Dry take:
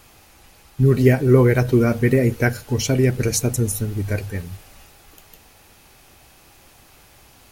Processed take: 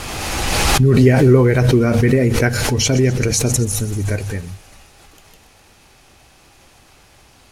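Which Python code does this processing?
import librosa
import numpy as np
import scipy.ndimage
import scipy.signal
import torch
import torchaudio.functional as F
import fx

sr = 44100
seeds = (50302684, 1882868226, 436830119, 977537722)

y = scipy.signal.sosfilt(scipy.signal.butter(2, 9200.0, 'lowpass', fs=sr, output='sos'), x)
y = fx.echo_wet_highpass(y, sr, ms=128, feedback_pct=71, hz=4200.0, wet_db=-11.5)
y = fx.pre_swell(y, sr, db_per_s=22.0)
y = y * librosa.db_to_amplitude(1.5)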